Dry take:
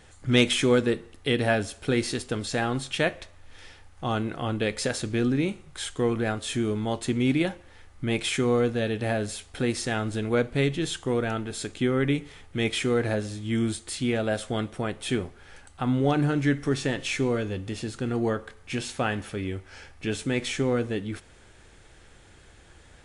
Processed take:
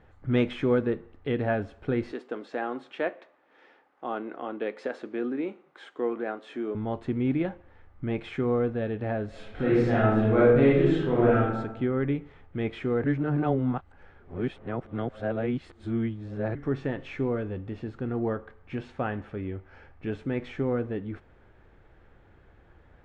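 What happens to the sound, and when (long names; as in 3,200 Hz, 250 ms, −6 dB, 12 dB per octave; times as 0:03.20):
0:02.12–0:06.75: high-pass filter 270 Hz 24 dB per octave
0:09.29–0:11.42: thrown reverb, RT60 1 s, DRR −7.5 dB
0:13.04–0:16.55: reverse
whole clip: low-pass filter 1,500 Hz 12 dB per octave; level −2.5 dB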